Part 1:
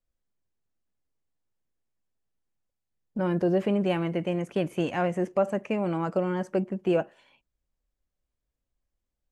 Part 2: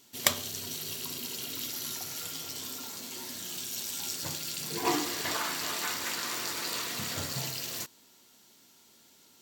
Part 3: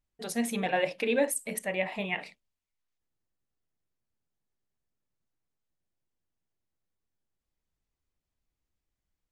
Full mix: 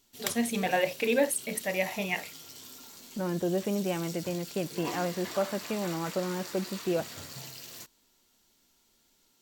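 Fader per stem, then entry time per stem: -5.0, -8.5, +1.0 dB; 0.00, 0.00, 0.00 s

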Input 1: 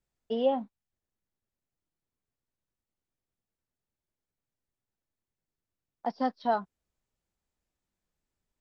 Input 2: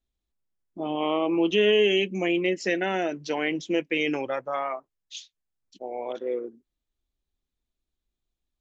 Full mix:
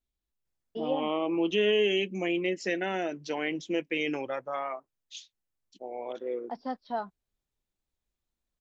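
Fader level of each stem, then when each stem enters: -5.5, -4.5 dB; 0.45, 0.00 s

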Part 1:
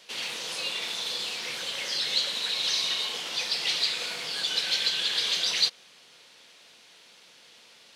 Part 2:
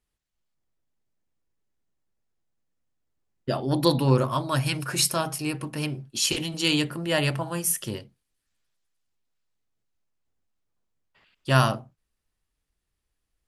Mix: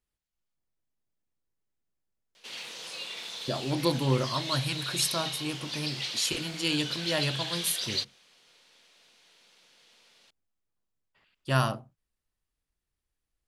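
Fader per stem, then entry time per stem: -7.0, -5.5 dB; 2.35, 0.00 s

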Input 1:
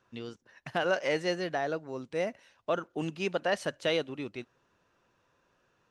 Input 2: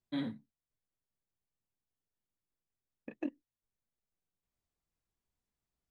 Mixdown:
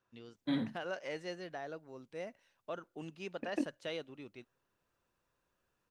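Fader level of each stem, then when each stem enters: -12.0, +2.5 dB; 0.00, 0.35 s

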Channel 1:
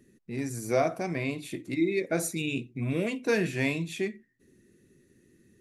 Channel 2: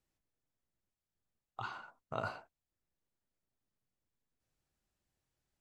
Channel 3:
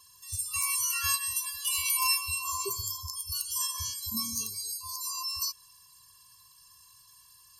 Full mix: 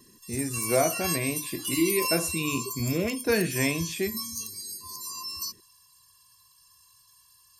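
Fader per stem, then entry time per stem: +1.5, -18.0, -2.0 dB; 0.00, 0.00, 0.00 s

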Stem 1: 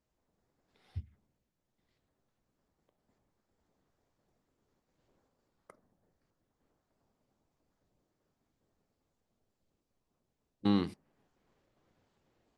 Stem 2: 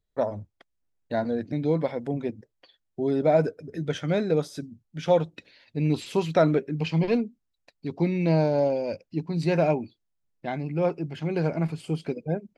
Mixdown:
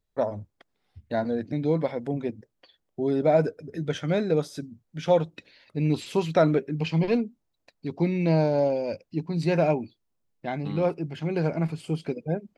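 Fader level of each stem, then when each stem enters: -8.0, 0.0 dB; 0.00, 0.00 s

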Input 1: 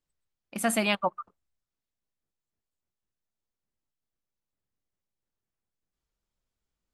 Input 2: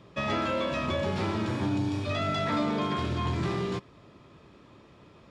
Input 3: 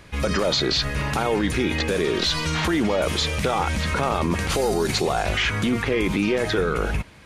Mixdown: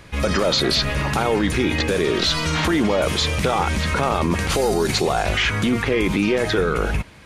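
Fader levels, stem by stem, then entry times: -6.0, -6.0, +2.5 dB; 0.00, 0.00, 0.00 s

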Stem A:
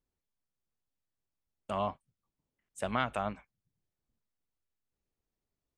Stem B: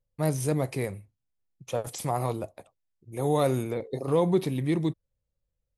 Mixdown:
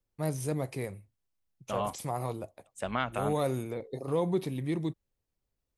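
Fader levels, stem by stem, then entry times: 0.0, -5.5 dB; 0.00, 0.00 s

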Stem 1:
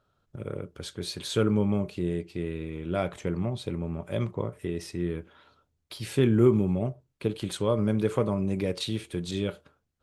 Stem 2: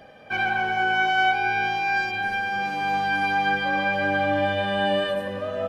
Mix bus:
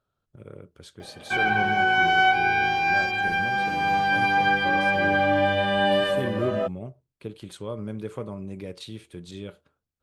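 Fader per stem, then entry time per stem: -8.0, +1.5 dB; 0.00, 1.00 s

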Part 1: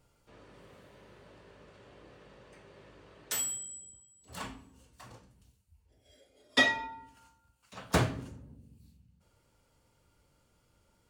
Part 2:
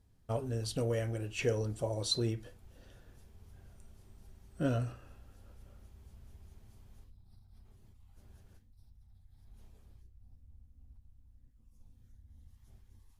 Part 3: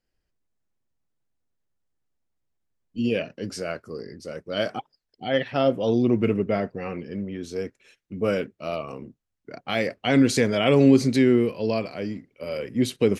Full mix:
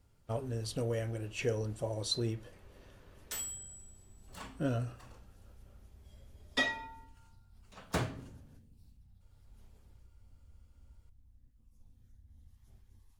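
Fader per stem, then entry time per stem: -6.5 dB, -1.5 dB, off; 0.00 s, 0.00 s, off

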